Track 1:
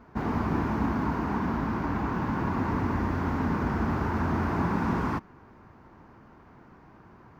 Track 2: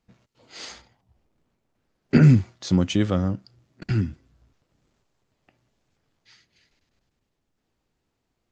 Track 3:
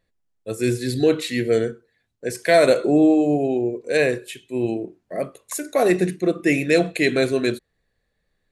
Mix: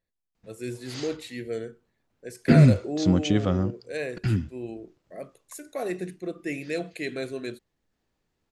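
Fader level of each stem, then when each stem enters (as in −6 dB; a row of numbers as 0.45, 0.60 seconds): muted, −1.5 dB, −13.0 dB; muted, 0.35 s, 0.00 s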